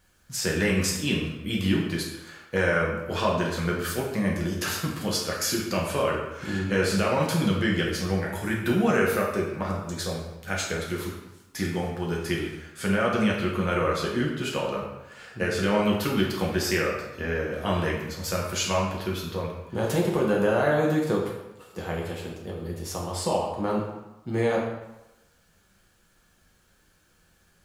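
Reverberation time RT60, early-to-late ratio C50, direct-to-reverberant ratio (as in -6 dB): 0.95 s, 3.0 dB, -3.0 dB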